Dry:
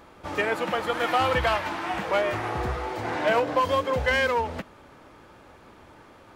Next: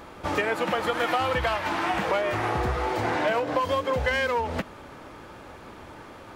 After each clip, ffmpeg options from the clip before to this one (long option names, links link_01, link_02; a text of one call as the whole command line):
ffmpeg -i in.wav -af "acompressor=threshold=-29dB:ratio=5,volume=6.5dB" out.wav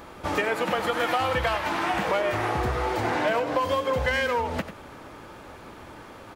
ffmpeg -i in.wav -af "highshelf=frequency=9800:gain=4.5,aecho=1:1:93:0.266" out.wav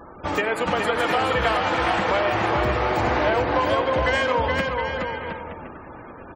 ffmpeg -i in.wav -af "aecho=1:1:420|714|919.8|1064|1165:0.631|0.398|0.251|0.158|0.1,afftfilt=real='re*gte(hypot(re,im),0.00794)':imag='im*gte(hypot(re,im),0.00794)':win_size=1024:overlap=0.75,aexciter=amount=2.1:drive=4.3:freq=7500,volume=2dB" out.wav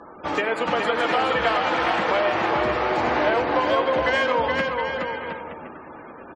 ffmpeg -i in.wav -filter_complex "[0:a]acrossover=split=160 7300:gain=0.224 1 0.0708[link_01][link_02][link_03];[link_01][link_02][link_03]amix=inputs=3:normalize=0,asplit=2[link_04][link_05];[link_05]adelay=13,volume=-13dB[link_06];[link_04][link_06]amix=inputs=2:normalize=0" out.wav